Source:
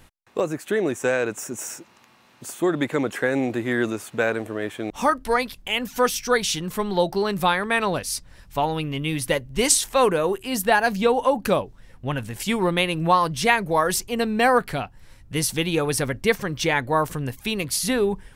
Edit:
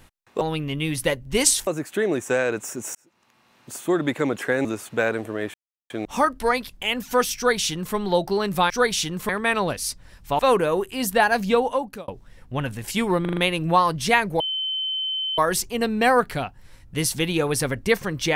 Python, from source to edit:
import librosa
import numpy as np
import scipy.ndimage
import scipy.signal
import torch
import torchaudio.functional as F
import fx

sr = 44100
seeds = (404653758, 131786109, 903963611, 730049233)

y = fx.edit(x, sr, fx.fade_in_span(start_s=1.69, length_s=0.81),
    fx.cut(start_s=3.39, length_s=0.47),
    fx.insert_silence(at_s=4.75, length_s=0.36),
    fx.duplicate(start_s=6.21, length_s=0.59, to_s=7.55),
    fx.move(start_s=8.65, length_s=1.26, to_s=0.41),
    fx.fade_out_span(start_s=11.09, length_s=0.51),
    fx.stutter(start_s=12.73, slice_s=0.04, count=5),
    fx.insert_tone(at_s=13.76, length_s=0.98, hz=3070.0, db=-23.5), tone=tone)